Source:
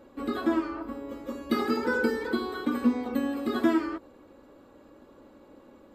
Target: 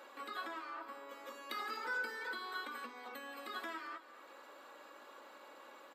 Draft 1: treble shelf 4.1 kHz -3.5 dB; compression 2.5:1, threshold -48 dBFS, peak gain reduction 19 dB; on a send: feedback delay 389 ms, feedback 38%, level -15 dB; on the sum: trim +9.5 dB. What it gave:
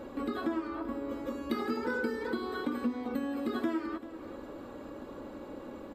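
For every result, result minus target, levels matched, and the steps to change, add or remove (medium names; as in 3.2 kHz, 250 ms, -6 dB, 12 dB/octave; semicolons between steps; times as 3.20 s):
echo 165 ms late; 1 kHz band -4.0 dB
change: feedback delay 224 ms, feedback 38%, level -15 dB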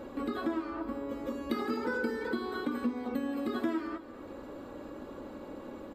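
1 kHz band -4.0 dB
add after compression: high-pass 1.1 kHz 12 dB/octave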